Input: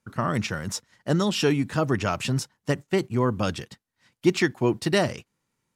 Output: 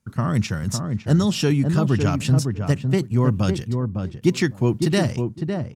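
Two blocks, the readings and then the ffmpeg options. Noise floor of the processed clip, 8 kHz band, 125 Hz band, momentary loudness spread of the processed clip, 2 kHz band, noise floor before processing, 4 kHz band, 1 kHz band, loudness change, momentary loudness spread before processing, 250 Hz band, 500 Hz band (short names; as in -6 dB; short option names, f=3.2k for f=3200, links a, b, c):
-43 dBFS, +2.5 dB, +9.0 dB, 6 LU, -1.5 dB, -81 dBFS, +0.5 dB, -1.0 dB, +4.0 dB, 9 LU, +5.0 dB, +0.5 dB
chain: -filter_complex "[0:a]bass=f=250:g=11,treble=f=4k:g=5,asplit=2[a][b];[b]adelay=556,lowpass=f=1k:p=1,volume=-4.5dB,asplit=2[c][d];[d]adelay=556,lowpass=f=1k:p=1,volume=0.15,asplit=2[e][f];[f]adelay=556,lowpass=f=1k:p=1,volume=0.15[g];[c][e][g]amix=inputs=3:normalize=0[h];[a][h]amix=inputs=2:normalize=0,volume=-2dB"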